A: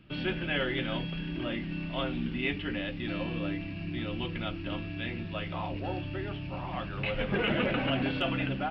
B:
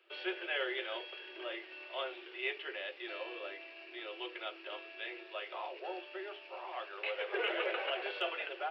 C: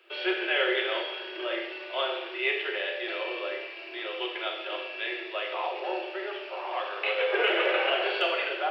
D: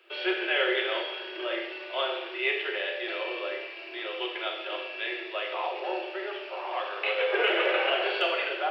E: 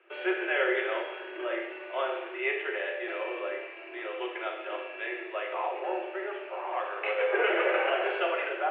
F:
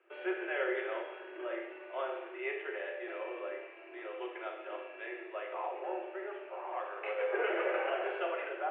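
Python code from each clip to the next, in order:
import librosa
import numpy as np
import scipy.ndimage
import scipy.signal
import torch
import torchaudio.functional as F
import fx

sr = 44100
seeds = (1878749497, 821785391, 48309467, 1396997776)

y1 = scipy.signal.sosfilt(scipy.signal.cheby1(8, 1.0, 350.0, 'highpass', fs=sr, output='sos'), x)
y1 = y1 * librosa.db_to_amplitude(-4.0)
y2 = fx.rev_schroeder(y1, sr, rt60_s=0.98, comb_ms=29, drr_db=2.5)
y2 = y2 * librosa.db_to_amplitude(8.5)
y3 = y2
y4 = scipy.signal.sosfilt(scipy.signal.butter(4, 2300.0, 'lowpass', fs=sr, output='sos'), y3)
y5 = fx.high_shelf(y4, sr, hz=3100.0, db=-11.5)
y5 = y5 * librosa.db_to_amplitude(-5.5)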